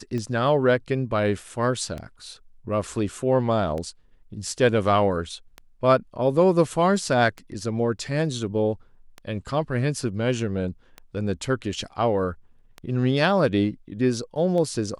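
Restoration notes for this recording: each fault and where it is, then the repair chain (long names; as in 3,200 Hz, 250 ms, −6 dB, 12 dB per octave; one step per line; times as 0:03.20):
scratch tick 33 1/3 rpm −20 dBFS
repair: click removal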